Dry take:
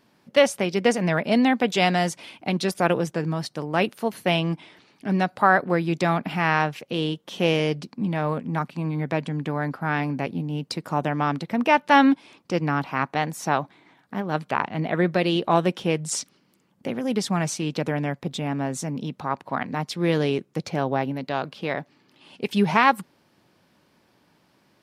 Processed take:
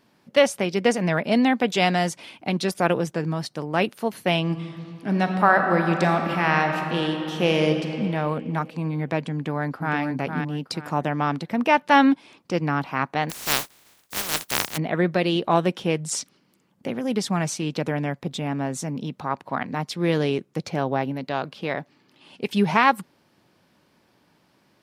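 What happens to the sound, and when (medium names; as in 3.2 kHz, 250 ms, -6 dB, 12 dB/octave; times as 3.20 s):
4.41–7.98 s: reverb throw, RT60 3 s, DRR 4 dB
9.34–9.98 s: echo throw 460 ms, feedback 30%, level -6 dB
13.29–14.76 s: spectral contrast reduction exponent 0.13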